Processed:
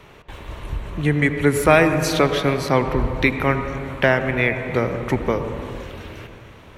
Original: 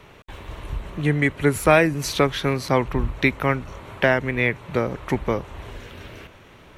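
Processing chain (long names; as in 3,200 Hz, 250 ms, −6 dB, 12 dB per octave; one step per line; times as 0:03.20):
on a send: head-to-tape spacing loss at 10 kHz 20 dB + convolution reverb RT60 2.4 s, pre-delay 75 ms, DRR 11 dB
on the sum: level +1.5 dB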